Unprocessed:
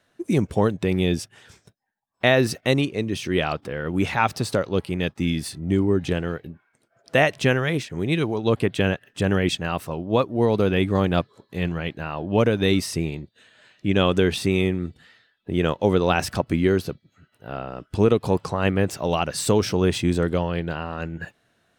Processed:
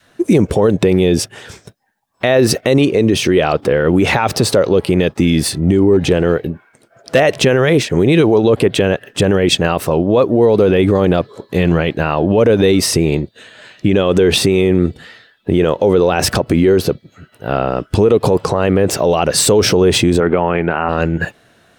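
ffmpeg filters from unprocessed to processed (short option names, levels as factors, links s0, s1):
-filter_complex "[0:a]asettb=1/sr,asplit=3[s0][s1][s2];[s0]atrim=end=5.934[s3];[s1]atrim=start=5.93:end=7.2,asetpts=PTS-STARTPTS,afade=t=in:d=0.004:c=qsin,afade=t=out:st=1.266:d=0.004:c=qsin,volume=4.22,asoftclip=hard,volume=0.237[s4];[s2]atrim=start=7.196[s5];[s3][s4]acrossfade=d=0.004:c1=hsin:c2=qsin[s6];[s6][s5]acrossfade=d=0.004:c1=qsin:c2=hsin,asettb=1/sr,asplit=3[s7][s8][s9];[s7]atrim=end=20.204[s10];[s8]atrim=start=20.2:end=20.89,asetpts=PTS-STARTPTS,afade=t=in:d=0.004:c=qsin,afade=t=out:st=0.686:d=0.004:c=qsin,highpass=120,equalizer=f=140:t=q:w=4:g=-10,equalizer=f=300:t=q:w=4:g=-4,equalizer=f=510:t=q:w=4:g=-7,equalizer=f=820:t=q:w=4:g=5,equalizer=f=1300:t=q:w=4:g=5,equalizer=f=2300:t=q:w=4:g=7,lowpass=f=2500:w=0.5412,lowpass=f=2500:w=1.3066[s11];[s9]atrim=start=20.886[s12];[s10][s11]acrossfade=d=0.004:c1=hsin:c2=qsin[s13];[s13][s12]acrossfade=d=0.004:c1=qsin:c2=hsin,adynamicequalizer=threshold=0.02:dfrequency=470:dqfactor=1.1:tfrequency=470:tqfactor=1.1:attack=5:release=100:ratio=0.375:range=4:mode=boostabove:tftype=bell,alimiter=level_in=6.68:limit=0.891:release=50:level=0:latency=1,volume=0.794"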